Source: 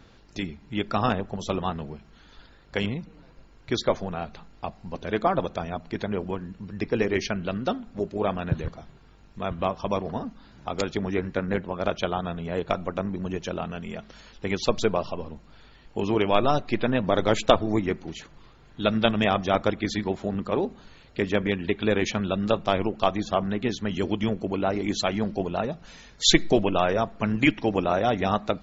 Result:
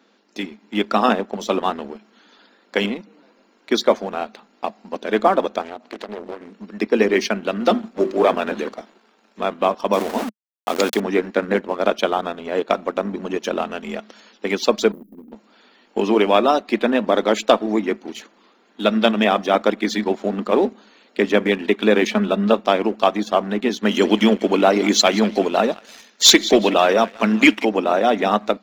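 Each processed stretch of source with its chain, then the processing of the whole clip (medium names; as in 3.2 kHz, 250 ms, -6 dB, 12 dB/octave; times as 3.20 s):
5.61–6.54 s: high-pass 200 Hz 24 dB/octave + compression 4:1, threshold -35 dBFS + loudspeaker Doppler distortion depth 0.56 ms
7.60–9.40 s: hum notches 50/100/150/200/250/300/350/400 Hz + waveshaping leveller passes 1 + frequency shift -22 Hz
9.93–11.00 s: small samples zeroed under -34.5 dBFS + decay stretcher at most 79 dB/s
14.92–15.32 s: companding laws mixed up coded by mu + inverse Chebyshev band-stop 760–4700 Hz, stop band 70 dB + high-order bell 540 Hz +13 dB 2.3 oct
22.07–22.54 s: distance through air 160 m + comb 4.7 ms, depth 50%
23.83–27.65 s: treble shelf 3.6 kHz +7.5 dB + band-passed feedback delay 185 ms, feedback 49%, band-pass 2.2 kHz, level -15 dB + waveshaping leveller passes 1
whole clip: elliptic high-pass 210 Hz; waveshaping leveller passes 1; level rider gain up to 6 dB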